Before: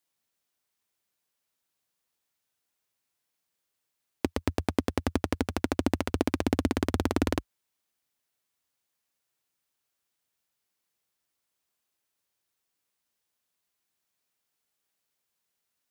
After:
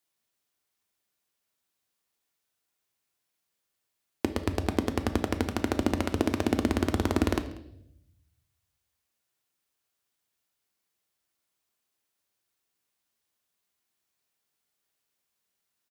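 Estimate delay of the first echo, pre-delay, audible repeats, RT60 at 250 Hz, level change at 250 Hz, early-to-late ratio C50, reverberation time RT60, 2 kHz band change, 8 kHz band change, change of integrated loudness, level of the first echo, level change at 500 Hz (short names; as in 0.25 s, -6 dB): 0.189 s, 3 ms, 1, 1.1 s, +1.0 dB, 12.0 dB, 0.75 s, +0.5 dB, +0.5 dB, +1.0 dB, -22.0 dB, +1.0 dB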